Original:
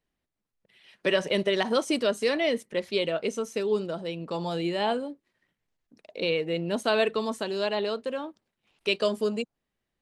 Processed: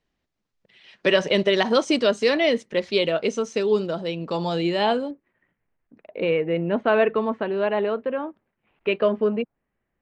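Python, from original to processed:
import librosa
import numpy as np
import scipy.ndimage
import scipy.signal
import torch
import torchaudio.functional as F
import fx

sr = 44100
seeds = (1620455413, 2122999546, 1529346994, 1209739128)

y = fx.lowpass(x, sr, hz=fx.steps((0.0, 6700.0), (5.11, 2300.0)), slope=24)
y = y * 10.0 ** (5.5 / 20.0)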